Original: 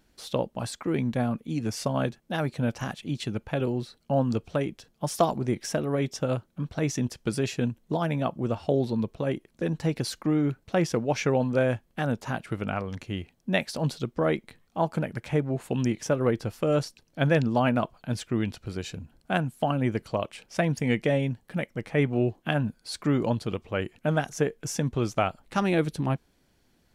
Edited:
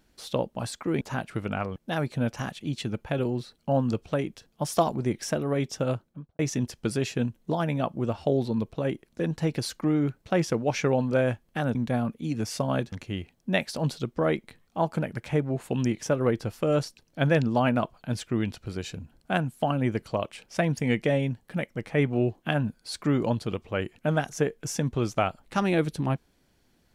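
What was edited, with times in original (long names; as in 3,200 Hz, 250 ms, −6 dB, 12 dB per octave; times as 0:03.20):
0:01.01–0:02.18: swap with 0:12.17–0:12.92
0:06.32–0:06.81: fade out and dull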